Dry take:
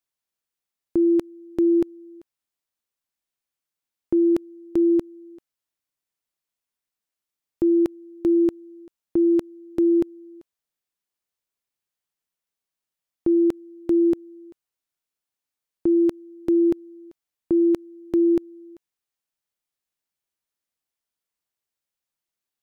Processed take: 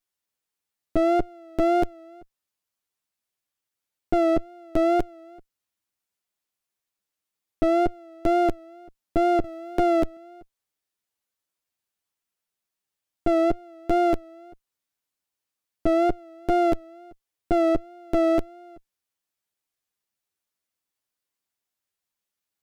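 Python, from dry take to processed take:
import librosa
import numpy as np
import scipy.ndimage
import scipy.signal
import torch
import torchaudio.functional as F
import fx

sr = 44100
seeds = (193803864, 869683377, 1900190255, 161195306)

y = fx.lower_of_two(x, sr, delay_ms=10.0)
y = fx.wow_flutter(y, sr, seeds[0], rate_hz=2.1, depth_cents=61.0)
y = fx.band_squash(y, sr, depth_pct=40, at=(9.44, 10.17))
y = F.gain(torch.from_numpy(y), 3.0).numpy()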